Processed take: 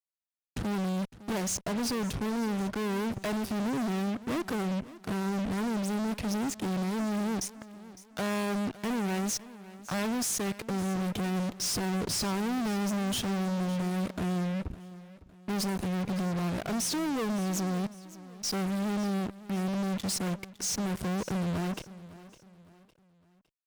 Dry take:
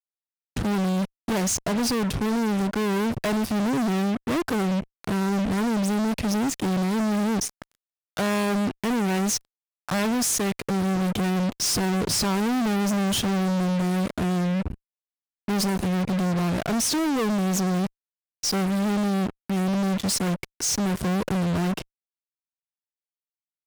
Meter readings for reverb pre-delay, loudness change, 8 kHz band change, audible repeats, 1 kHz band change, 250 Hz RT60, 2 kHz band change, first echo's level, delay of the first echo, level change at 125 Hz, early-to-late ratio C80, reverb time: no reverb audible, −7.0 dB, −7.0 dB, 3, −7.0 dB, no reverb audible, −7.0 dB, −17.5 dB, 558 ms, −7.0 dB, no reverb audible, no reverb audible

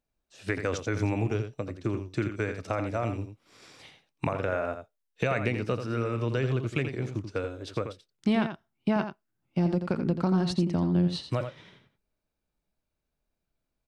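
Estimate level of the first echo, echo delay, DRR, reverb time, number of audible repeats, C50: −8.5 dB, 85 ms, no reverb audible, no reverb audible, 1, no reverb audible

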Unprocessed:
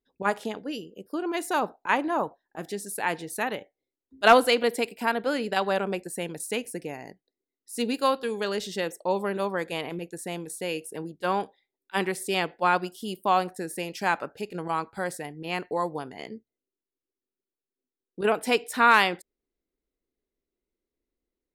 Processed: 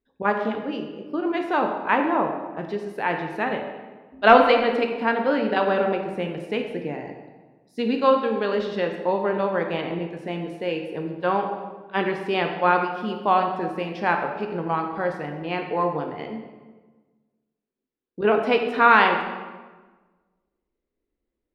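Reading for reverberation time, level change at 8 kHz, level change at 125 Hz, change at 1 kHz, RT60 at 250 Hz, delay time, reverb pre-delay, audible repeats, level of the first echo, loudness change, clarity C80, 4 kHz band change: 1.4 s, below −20 dB, +5.5 dB, +4.5 dB, 1.6 s, no echo audible, 11 ms, no echo audible, no echo audible, +4.0 dB, 7.5 dB, −1.0 dB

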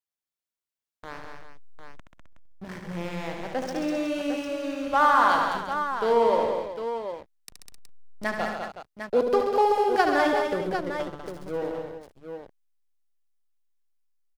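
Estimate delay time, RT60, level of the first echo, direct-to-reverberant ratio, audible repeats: 73 ms, no reverb audible, −7.0 dB, no reverb audible, 6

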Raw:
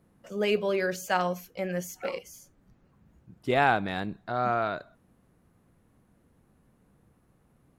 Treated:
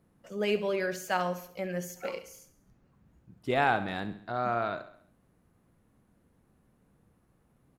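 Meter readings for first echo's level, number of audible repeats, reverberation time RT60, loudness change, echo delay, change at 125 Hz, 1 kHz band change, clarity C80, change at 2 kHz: −13.5 dB, 4, no reverb audible, −2.5 dB, 68 ms, −3.0 dB, −3.0 dB, no reverb audible, −2.5 dB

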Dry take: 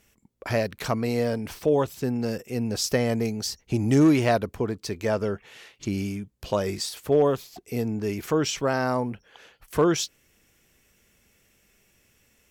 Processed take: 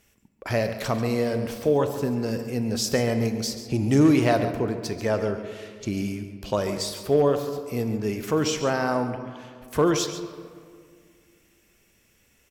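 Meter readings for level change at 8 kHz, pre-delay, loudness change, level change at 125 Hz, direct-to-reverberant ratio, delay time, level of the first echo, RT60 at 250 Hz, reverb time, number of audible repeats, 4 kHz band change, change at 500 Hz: +0.5 dB, 26 ms, +1.0 dB, +1.0 dB, 7.0 dB, 139 ms, −12.5 dB, 2.6 s, 2.1 s, 1, +0.5 dB, +1.0 dB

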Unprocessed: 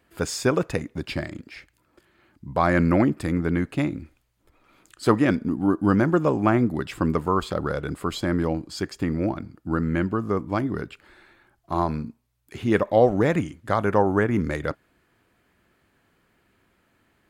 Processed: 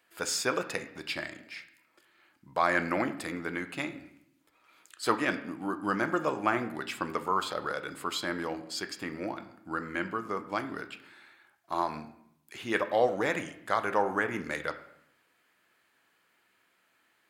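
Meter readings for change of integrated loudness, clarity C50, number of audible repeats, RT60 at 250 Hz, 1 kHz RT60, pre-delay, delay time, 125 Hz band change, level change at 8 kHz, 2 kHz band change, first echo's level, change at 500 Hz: −8.0 dB, 12.5 dB, no echo audible, 0.95 s, 0.70 s, 6 ms, no echo audible, −19.0 dB, 0.0 dB, −1.0 dB, no echo audible, −8.5 dB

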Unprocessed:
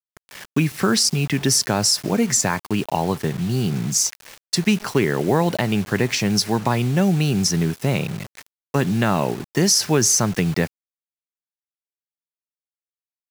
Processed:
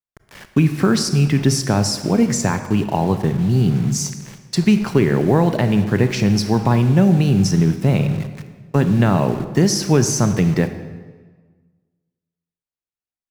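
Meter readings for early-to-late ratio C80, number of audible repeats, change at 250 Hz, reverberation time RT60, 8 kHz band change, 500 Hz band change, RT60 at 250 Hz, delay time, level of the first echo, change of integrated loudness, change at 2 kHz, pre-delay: 11.5 dB, no echo audible, +5.0 dB, 1.4 s, −5.0 dB, +3.0 dB, 1.5 s, no echo audible, no echo audible, +2.5 dB, −1.5 dB, 28 ms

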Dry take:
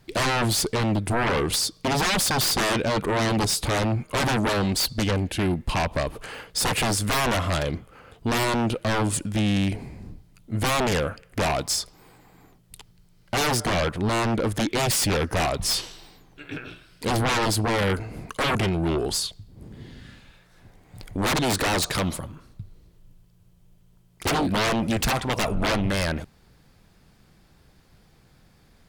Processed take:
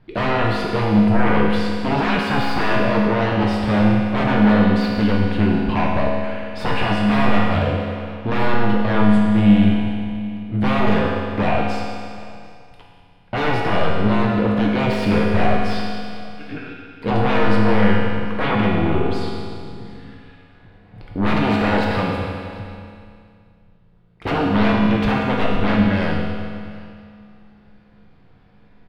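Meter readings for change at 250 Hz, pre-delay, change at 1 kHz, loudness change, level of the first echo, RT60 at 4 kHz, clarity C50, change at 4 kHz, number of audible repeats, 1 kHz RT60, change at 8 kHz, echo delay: +10.0 dB, 4 ms, +5.0 dB, +5.0 dB, −22.0 dB, 2.3 s, 0.0 dB, −3.5 dB, 1, 2.4 s, below −20 dB, 745 ms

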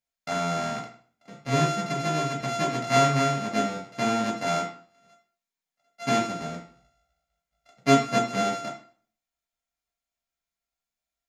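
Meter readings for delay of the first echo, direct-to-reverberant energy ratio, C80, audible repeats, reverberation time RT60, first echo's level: no echo audible, −3.5 dB, 12.0 dB, no echo audible, 0.50 s, no echo audible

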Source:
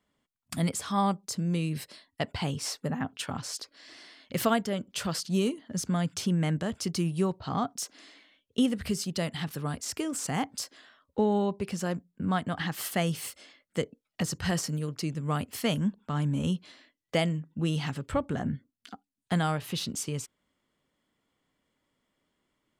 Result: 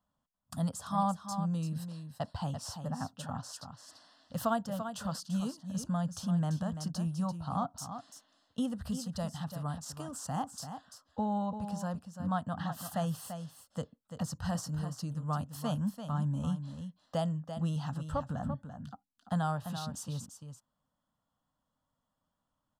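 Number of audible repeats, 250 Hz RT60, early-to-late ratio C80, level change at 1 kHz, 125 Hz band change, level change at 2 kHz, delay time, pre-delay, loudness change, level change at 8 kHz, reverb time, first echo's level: 1, no reverb audible, no reverb audible, −2.5 dB, −3.0 dB, −12.0 dB, 340 ms, no reverb audible, −5.0 dB, −8.5 dB, no reverb audible, −9.0 dB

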